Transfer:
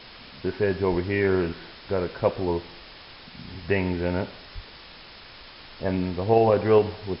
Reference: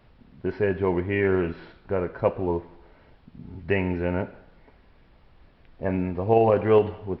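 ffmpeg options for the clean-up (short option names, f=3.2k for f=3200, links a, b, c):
-filter_complex "[0:a]asplit=3[a][b][c];[a]afade=t=out:st=0.9:d=0.02[d];[b]highpass=f=140:w=0.5412,highpass=f=140:w=1.3066,afade=t=in:st=0.9:d=0.02,afade=t=out:st=1.02:d=0.02[e];[c]afade=t=in:st=1.02:d=0.02[f];[d][e][f]amix=inputs=3:normalize=0,asplit=3[g][h][i];[g]afade=t=out:st=4.54:d=0.02[j];[h]highpass=f=140:w=0.5412,highpass=f=140:w=1.3066,afade=t=in:st=4.54:d=0.02,afade=t=out:st=4.66:d=0.02[k];[i]afade=t=in:st=4.66:d=0.02[l];[j][k][l]amix=inputs=3:normalize=0,afwtdn=0.01"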